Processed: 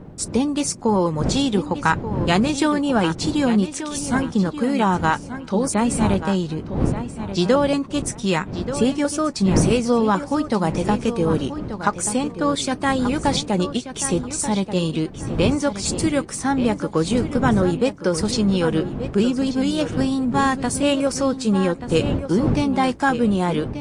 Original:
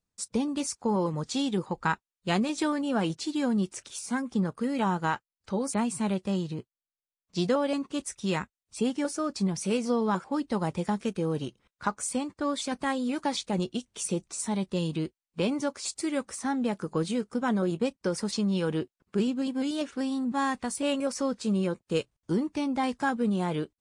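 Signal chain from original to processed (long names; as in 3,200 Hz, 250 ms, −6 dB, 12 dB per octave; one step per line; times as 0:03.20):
wind on the microphone 190 Hz −35 dBFS
low-shelf EQ 77 Hz −10.5 dB
feedback echo with a low-pass in the loop 1,183 ms, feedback 25%, low-pass 4,700 Hz, level −10.5 dB
level +9 dB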